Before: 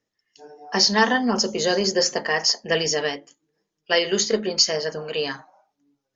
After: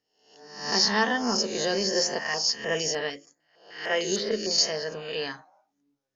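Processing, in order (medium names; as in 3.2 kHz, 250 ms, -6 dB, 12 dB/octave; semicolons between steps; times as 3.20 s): reverse spectral sustain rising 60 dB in 0.61 s; 2.19–4.51 s: step-sequenced notch 6.6 Hz 400–6700 Hz; trim -7 dB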